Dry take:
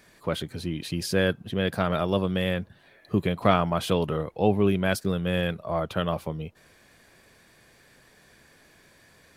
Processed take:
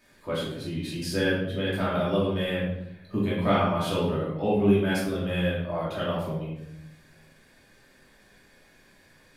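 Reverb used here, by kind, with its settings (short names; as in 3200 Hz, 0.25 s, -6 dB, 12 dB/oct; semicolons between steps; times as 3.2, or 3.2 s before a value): shoebox room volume 210 m³, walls mixed, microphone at 2.7 m; gain -10 dB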